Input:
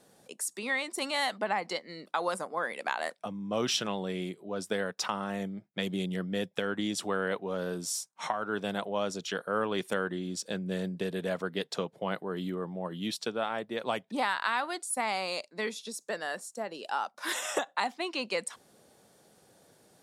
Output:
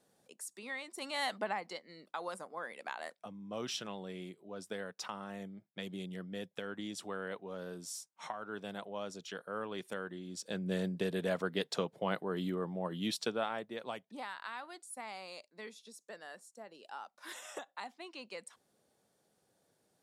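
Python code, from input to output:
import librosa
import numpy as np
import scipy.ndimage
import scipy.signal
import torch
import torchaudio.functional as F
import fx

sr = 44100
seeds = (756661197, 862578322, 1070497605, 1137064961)

y = fx.gain(x, sr, db=fx.line((0.93, -11.0), (1.35, -3.0), (1.7, -10.0), (10.26, -10.0), (10.67, -1.5), (13.3, -1.5), (14.19, -14.0)))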